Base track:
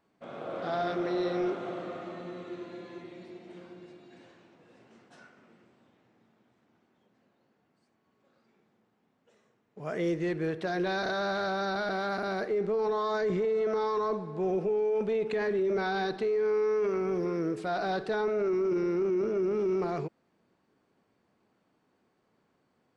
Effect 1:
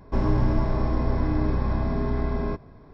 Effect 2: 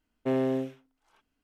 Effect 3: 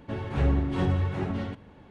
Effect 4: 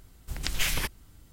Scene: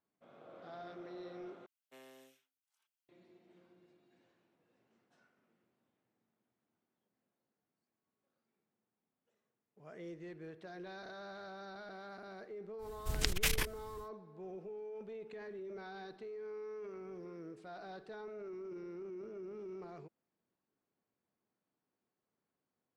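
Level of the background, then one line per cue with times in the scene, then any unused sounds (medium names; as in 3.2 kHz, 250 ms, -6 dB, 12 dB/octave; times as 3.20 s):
base track -18 dB
1.66 s: replace with 2 -7.5 dB + differentiator
12.78 s: add 4 -0.5 dB, fades 0.10 s + transformer saturation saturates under 190 Hz
not used: 1, 3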